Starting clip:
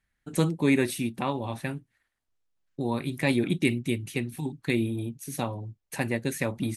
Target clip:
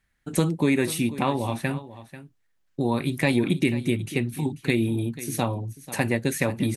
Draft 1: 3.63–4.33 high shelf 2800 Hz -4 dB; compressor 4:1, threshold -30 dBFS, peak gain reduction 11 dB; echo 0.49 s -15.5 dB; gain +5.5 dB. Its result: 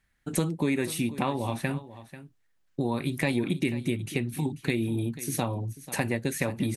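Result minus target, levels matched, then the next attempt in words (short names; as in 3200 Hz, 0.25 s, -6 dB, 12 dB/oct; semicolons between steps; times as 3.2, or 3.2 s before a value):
compressor: peak gain reduction +5 dB
3.63–4.33 high shelf 2800 Hz -4 dB; compressor 4:1, threshold -23 dBFS, peak gain reduction 5.5 dB; echo 0.49 s -15.5 dB; gain +5.5 dB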